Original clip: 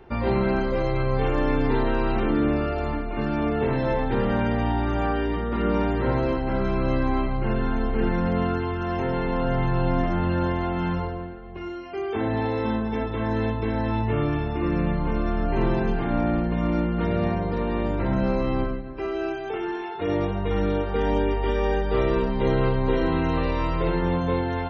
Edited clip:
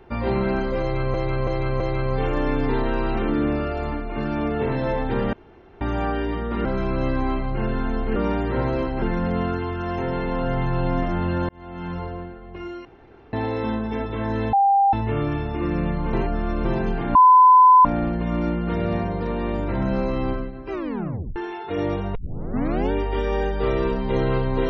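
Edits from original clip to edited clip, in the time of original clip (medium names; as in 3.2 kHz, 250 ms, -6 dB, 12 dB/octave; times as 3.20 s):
0.81–1.14 s: loop, 4 plays
4.34–4.82 s: room tone
5.66–6.52 s: move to 8.03 s
10.50–11.19 s: fade in
11.86–12.34 s: room tone
13.54–13.94 s: bleep 794 Hz -13.5 dBFS
15.14–15.66 s: reverse
16.16 s: add tone 1.01 kHz -8 dBFS 0.70 s
19.03 s: tape stop 0.64 s
20.46 s: tape start 0.77 s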